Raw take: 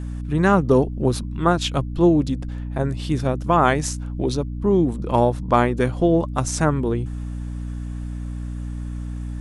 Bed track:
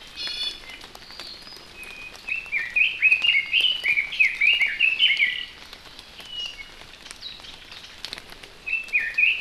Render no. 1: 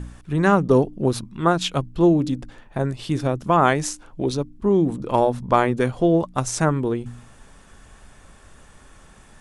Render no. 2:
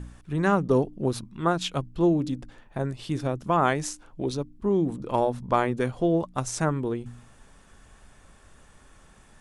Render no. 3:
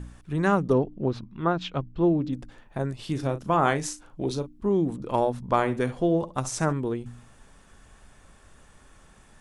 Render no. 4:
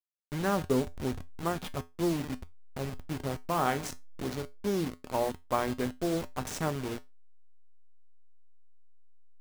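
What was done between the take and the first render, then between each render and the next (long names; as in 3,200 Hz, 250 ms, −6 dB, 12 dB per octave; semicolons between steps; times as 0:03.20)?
hum removal 60 Hz, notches 5
level −5.5 dB
0:00.73–0:02.33: high-frequency loss of the air 200 metres; 0:02.95–0:04.67: double-tracking delay 37 ms −10.5 dB; 0:05.47–0:06.73: flutter between parallel walls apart 11.7 metres, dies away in 0.27 s
hold until the input has moved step −26.5 dBFS; tuned comb filter 84 Hz, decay 0.22 s, harmonics odd, mix 60%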